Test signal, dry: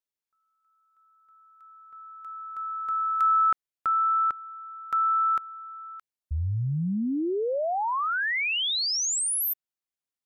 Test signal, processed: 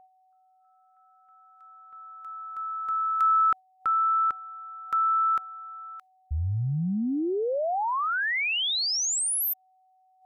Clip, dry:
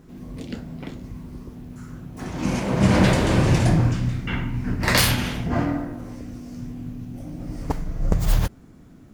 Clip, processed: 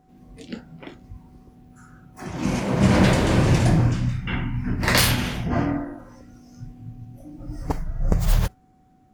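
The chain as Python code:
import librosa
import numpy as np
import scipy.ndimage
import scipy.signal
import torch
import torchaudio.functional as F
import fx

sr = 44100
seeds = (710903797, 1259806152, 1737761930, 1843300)

y = x + 10.0 ** (-50.0 / 20.0) * np.sin(2.0 * np.pi * 750.0 * np.arange(len(x)) / sr)
y = fx.noise_reduce_blind(y, sr, reduce_db=11)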